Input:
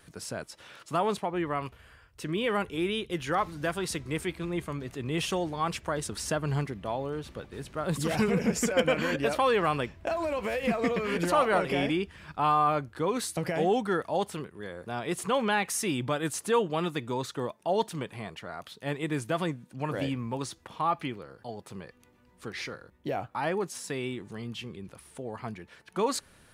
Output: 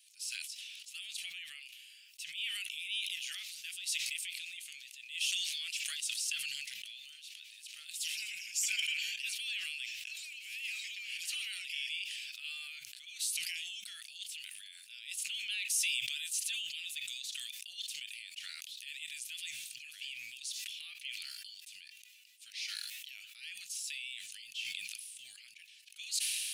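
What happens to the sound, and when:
4.74–5.59 HPF 120 Hz -> 500 Hz 6 dB/oct
whole clip: elliptic high-pass 2600 Hz, stop band 60 dB; sustainer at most 21 dB/s

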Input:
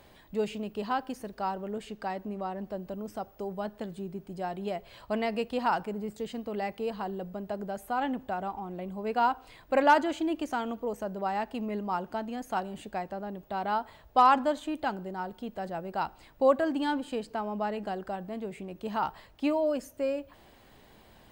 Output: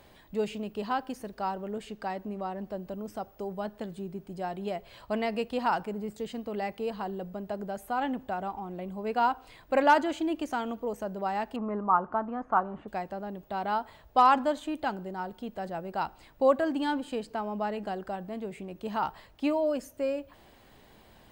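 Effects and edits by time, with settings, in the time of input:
11.56–12.88 synth low-pass 1200 Hz, resonance Q 4.4

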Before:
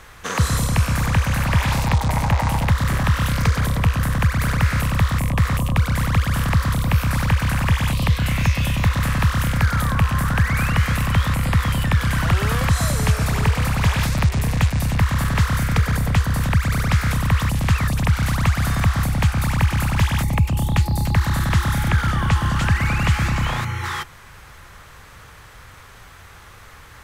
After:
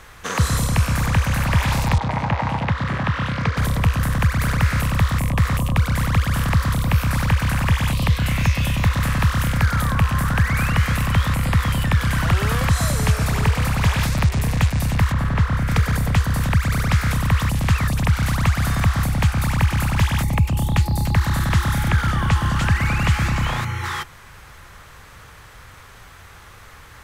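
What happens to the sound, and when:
1.98–3.57 BPF 110–3400 Hz
15.12–15.68 LPF 1700 Hz 6 dB/oct

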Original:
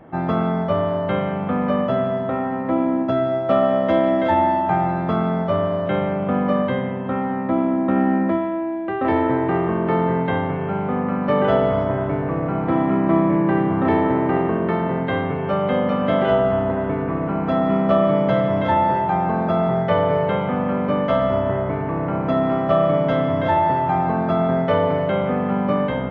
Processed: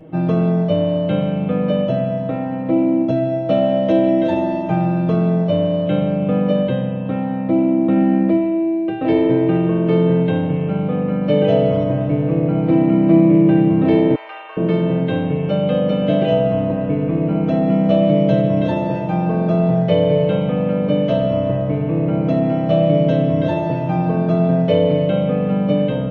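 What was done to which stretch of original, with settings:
14.15–14.57 HPF 910 Hz 24 dB/oct
whole clip: band shelf 1200 Hz -12 dB; comb 6.4 ms, depth 85%; gain +2.5 dB

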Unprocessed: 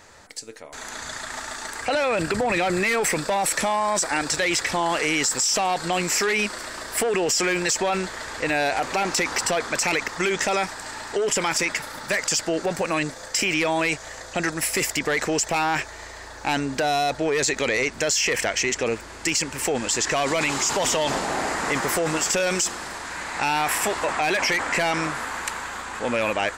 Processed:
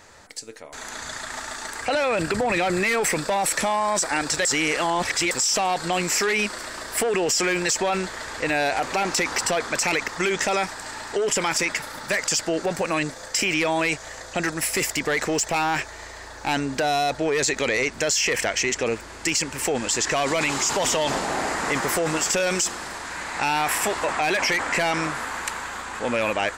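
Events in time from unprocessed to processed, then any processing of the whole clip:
4.45–5.31 reverse
14.42–16.51 hard clip -17 dBFS

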